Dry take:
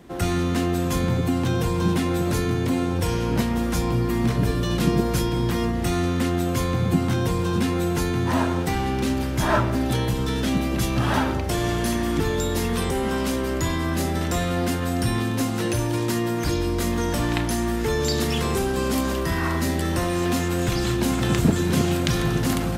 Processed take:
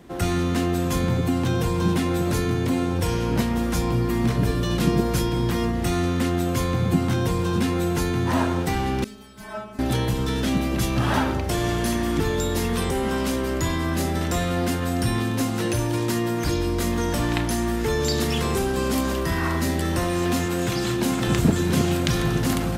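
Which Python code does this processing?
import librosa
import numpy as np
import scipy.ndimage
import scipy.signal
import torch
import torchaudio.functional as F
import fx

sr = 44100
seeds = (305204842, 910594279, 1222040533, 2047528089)

y = fx.stiff_resonator(x, sr, f0_hz=210.0, decay_s=0.37, stiffness=0.002, at=(9.04, 9.79))
y = fx.highpass(y, sr, hz=110.0, slope=12, at=(20.46, 21.28))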